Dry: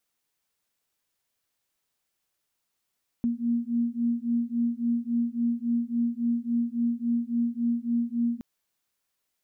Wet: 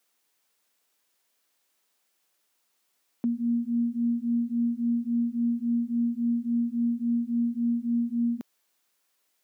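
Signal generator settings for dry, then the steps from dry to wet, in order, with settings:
two tones that beat 234 Hz, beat 3.6 Hz, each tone −27 dBFS 5.17 s
high-pass filter 240 Hz 12 dB per octave
in parallel at +1 dB: brickwall limiter −33 dBFS

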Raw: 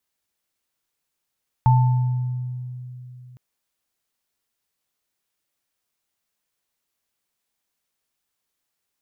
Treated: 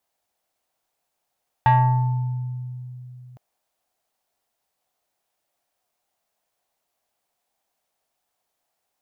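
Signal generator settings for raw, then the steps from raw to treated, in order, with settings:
inharmonic partials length 1.71 s, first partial 125 Hz, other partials 885 Hz, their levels −5.5 dB, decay 3.33 s, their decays 1.07 s, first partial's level −11.5 dB
parametric band 710 Hz +14 dB 0.88 octaves
soft clipping −11 dBFS

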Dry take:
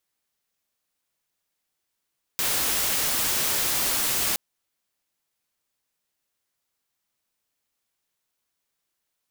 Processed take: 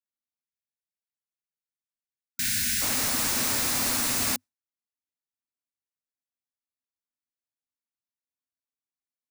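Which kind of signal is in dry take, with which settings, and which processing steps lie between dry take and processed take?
noise white, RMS −24.5 dBFS 1.97 s
thirty-one-band graphic EQ 100 Hz +8 dB, 250 Hz +12 dB, 400 Hz −4 dB, 3,150 Hz −6 dB, 16,000 Hz −10 dB
gain on a spectral selection 0:00.43–0:02.82, 250–1,400 Hz −24 dB
noise gate with hold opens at −19 dBFS

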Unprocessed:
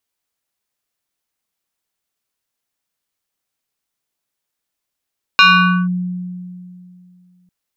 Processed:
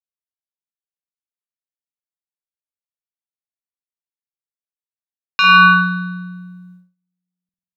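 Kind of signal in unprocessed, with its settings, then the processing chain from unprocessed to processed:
two-operator FM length 2.10 s, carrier 180 Hz, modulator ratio 7.29, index 2.5, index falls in 0.49 s linear, decay 2.61 s, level −4 dB
brickwall limiter −10 dBFS
spring reverb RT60 1.2 s, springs 48 ms, chirp 30 ms, DRR 1 dB
noise gate −42 dBFS, range −30 dB

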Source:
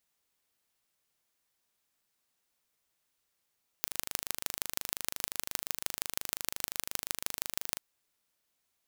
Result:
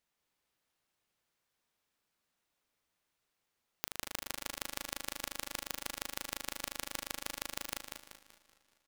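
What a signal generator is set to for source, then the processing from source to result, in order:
impulse train 25.7 per second, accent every 4, −2.5 dBFS 3.94 s
high-shelf EQ 5,200 Hz −9.5 dB
repeating echo 191 ms, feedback 38%, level −5 dB
feedback echo with a swinging delay time 200 ms, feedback 64%, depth 117 cents, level −21 dB

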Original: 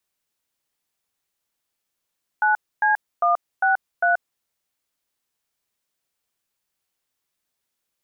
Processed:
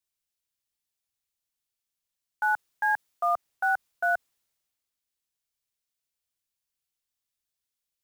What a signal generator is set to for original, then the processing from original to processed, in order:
touch tones "9C163", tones 131 ms, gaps 270 ms, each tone −18 dBFS
in parallel at −9 dB: floating-point word with a short mantissa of 2 bits
on the sum: brickwall limiter −18 dBFS
multiband upward and downward expander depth 40%

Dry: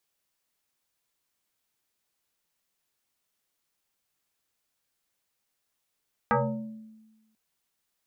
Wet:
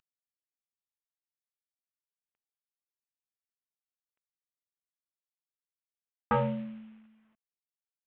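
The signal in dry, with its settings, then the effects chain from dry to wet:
two-operator FM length 1.04 s, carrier 219 Hz, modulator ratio 1.6, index 4.3, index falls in 0.87 s exponential, decay 1.22 s, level −18.5 dB
variable-slope delta modulation 16 kbit/s
dynamic equaliser 2,500 Hz, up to −3 dB, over −42 dBFS, Q 0.75

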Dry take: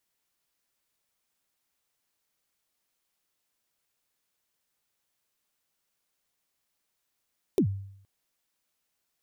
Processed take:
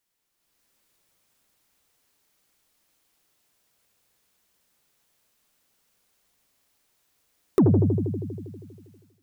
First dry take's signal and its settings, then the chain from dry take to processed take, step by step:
synth kick length 0.47 s, from 440 Hz, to 98 Hz, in 86 ms, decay 0.69 s, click on, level −17 dB
on a send: delay with a low-pass on its return 80 ms, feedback 76%, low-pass 580 Hz, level −3.5 dB
on the sum: automatic gain control gain up to 9.5 dB
soft clipping −11.5 dBFS

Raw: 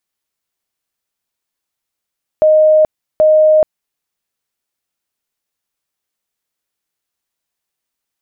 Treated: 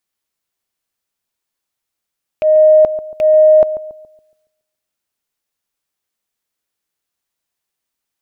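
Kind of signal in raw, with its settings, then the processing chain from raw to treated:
tone bursts 620 Hz, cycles 266, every 0.78 s, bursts 2, −5.5 dBFS
loose part that buzzes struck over −27 dBFS, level −11 dBFS
transient designer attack −7 dB, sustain +5 dB
feedback echo with a low-pass in the loop 140 ms, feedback 43%, low-pass 900 Hz, level −12 dB

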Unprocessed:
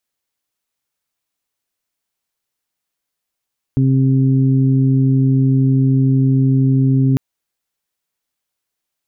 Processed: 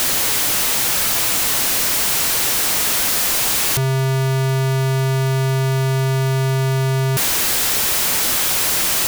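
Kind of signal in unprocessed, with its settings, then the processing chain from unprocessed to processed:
steady harmonic partials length 3.40 s, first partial 133 Hz, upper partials −4/−18 dB, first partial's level −11.5 dB
sign of each sample alone

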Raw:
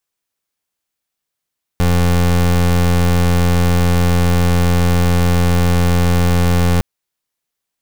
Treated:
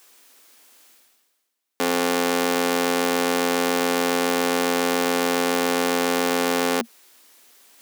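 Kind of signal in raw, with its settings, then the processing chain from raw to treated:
pulse wave 87.2 Hz, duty 27% −12.5 dBFS 5.01 s
Chebyshev high-pass filter 230 Hz, order 5
reversed playback
upward compression, threshold −31 dBFS
reversed playback

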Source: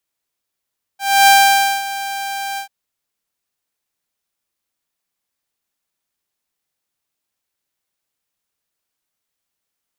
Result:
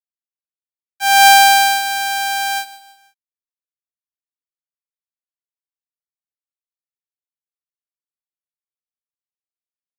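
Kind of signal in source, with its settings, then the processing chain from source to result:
note with an ADSR envelope saw 790 Hz, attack 282 ms, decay 549 ms, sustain −16 dB, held 1.59 s, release 99 ms −3.5 dBFS
in parallel at +2.5 dB: downward compressor, threshold −20 dBFS
on the sum: dead-zone distortion −28 dBFS
repeating echo 161 ms, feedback 42%, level −17.5 dB

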